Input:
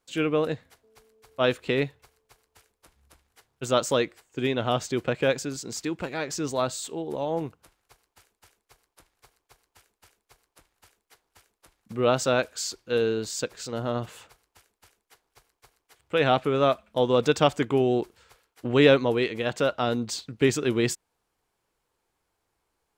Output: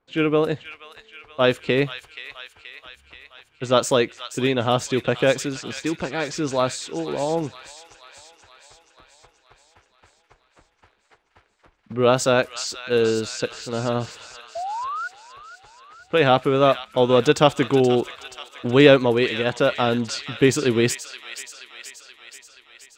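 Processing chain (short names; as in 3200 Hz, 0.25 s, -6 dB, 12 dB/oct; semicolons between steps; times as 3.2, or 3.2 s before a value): low-pass opened by the level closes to 2100 Hz, open at -21.5 dBFS; painted sound rise, 14.55–15.08, 650–1500 Hz -33 dBFS; thin delay 0.478 s, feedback 63%, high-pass 1700 Hz, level -8.5 dB; gain +5 dB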